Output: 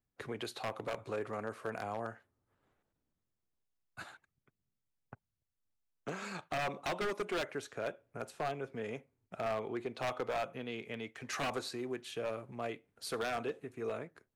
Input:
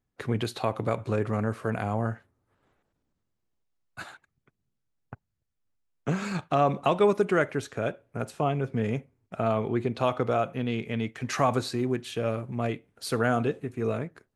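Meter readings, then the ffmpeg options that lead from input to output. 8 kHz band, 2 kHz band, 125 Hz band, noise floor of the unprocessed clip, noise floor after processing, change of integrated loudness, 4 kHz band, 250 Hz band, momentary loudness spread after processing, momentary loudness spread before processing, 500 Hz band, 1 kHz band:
-6.0 dB, -6.5 dB, -19.0 dB, -80 dBFS, under -85 dBFS, -11.0 dB, -5.5 dB, -14.5 dB, 12 LU, 10 LU, -10.5 dB, -10.5 dB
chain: -filter_complex "[0:a]acrossover=split=320[a][b];[a]acompressor=threshold=-43dB:ratio=6[c];[c][b]amix=inputs=2:normalize=0,aeval=exprs='0.0794*(abs(mod(val(0)/0.0794+3,4)-2)-1)':c=same,volume=-7dB"

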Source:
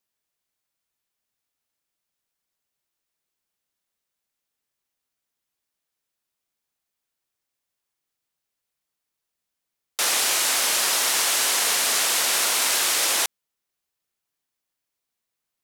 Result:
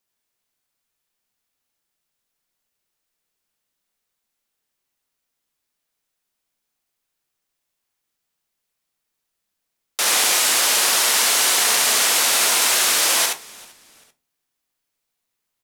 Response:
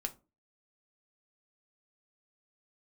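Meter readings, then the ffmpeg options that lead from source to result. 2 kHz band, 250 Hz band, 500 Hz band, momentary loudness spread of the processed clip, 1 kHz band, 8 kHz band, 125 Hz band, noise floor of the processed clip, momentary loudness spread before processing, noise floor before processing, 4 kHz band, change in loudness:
+4.5 dB, +4.5 dB, +4.5 dB, 5 LU, +4.5 dB, +4.5 dB, n/a, -79 dBFS, 3 LU, -83 dBFS, +4.5 dB, +4.5 dB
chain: -filter_complex "[0:a]asplit=3[a][b][c];[b]adelay=389,afreqshift=-120,volume=-24dB[d];[c]adelay=778,afreqshift=-240,volume=-33.9dB[e];[a][d][e]amix=inputs=3:normalize=0,asplit=2[f][g];[1:a]atrim=start_sample=2205,adelay=69[h];[g][h]afir=irnorm=-1:irlink=0,volume=-2.5dB[i];[f][i]amix=inputs=2:normalize=0,volume=2.5dB"

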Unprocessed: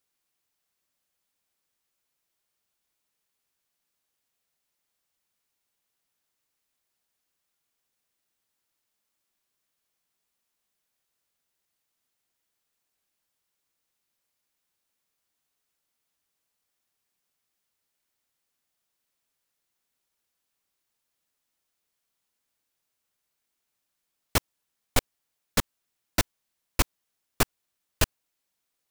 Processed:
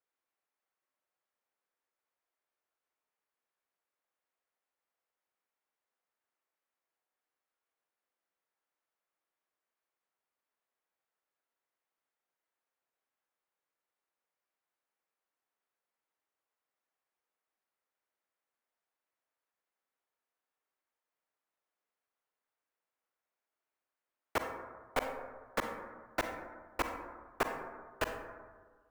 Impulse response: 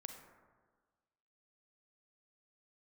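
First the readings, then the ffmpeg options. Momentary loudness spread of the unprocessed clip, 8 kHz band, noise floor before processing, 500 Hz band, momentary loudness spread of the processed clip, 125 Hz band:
2 LU, -18.5 dB, -81 dBFS, -3.0 dB, 11 LU, -18.5 dB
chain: -filter_complex "[0:a]acrossover=split=320 2200:gain=0.141 1 0.158[a][b][c];[a][b][c]amix=inputs=3:normalize=0[d];[1:a]atrim=start_sample=2205[e];[d][e]afir=irnorm=-1:irlink=0,volume=2dB"

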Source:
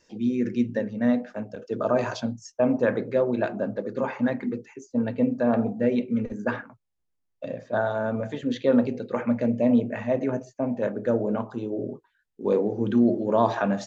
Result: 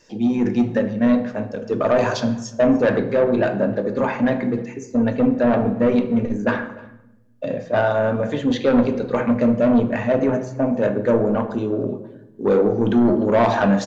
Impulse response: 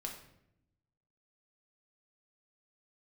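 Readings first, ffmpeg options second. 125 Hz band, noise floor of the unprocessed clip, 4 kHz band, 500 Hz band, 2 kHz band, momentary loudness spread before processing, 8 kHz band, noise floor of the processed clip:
+7.5 dB, -76 dBFS, +8.5 dB, +6.5 dB, +7.0 dB, 10 LU, n/a, -45 dBFS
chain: -filter_complex "[0:a]asoftclip=type=tanh:threshold=-18.5dB,aecho=1:1:301:0.0708,asplit=2[a][b];[1:a]atrim=start_sample=2205,asetrate=37044,aresample=44100[c];[b][c]afir=irnorm=-1:irlink=0,volume=0dB[d];[a][d]amix=inputs=2:normalize=0,volume=3.5dB"

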